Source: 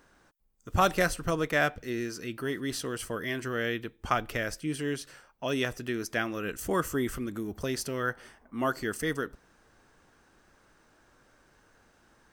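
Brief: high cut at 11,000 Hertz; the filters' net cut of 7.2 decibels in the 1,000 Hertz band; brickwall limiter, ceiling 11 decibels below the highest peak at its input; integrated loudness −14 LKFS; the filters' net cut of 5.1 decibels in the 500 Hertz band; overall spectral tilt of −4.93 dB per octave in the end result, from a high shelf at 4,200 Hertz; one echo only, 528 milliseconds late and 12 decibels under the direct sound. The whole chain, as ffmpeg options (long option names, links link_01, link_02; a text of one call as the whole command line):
ffmpeg -i in.wav -af "lowpass=11000,equalizer=frequency=500:width_type=o:gain=-4.5,equalizer=frequency=1000:width_type=o:gain=-8.5,highshelf=frequency=4200:gain=-6,alimiter=level_in=2.5dB:limit=-24dB:level=0:latency=1,volume=-2.5dB,aecho=1:1:528:0.251,volume=23.5dB" out.wav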